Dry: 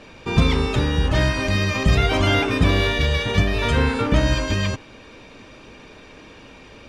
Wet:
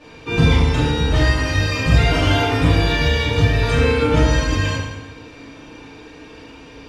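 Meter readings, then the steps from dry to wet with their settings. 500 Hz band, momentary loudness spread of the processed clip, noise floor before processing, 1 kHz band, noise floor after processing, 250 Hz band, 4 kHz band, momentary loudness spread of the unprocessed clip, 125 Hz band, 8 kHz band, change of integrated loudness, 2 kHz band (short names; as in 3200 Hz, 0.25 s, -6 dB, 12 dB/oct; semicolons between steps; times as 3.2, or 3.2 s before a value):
+2.5 dB, 6 LU, -45 dBFS, +2.5 dB, -41 dBFS, +2.0 dB, +1.5 dB, 4 LU, +3.5 dB, +3.0 dB, +2.5 dB, +2.0 dB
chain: FDN reverb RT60 1.1 s, low-frequency decay 1.1×, high-frequency decay 0.85×, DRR -9.5 dB; gain -7 dB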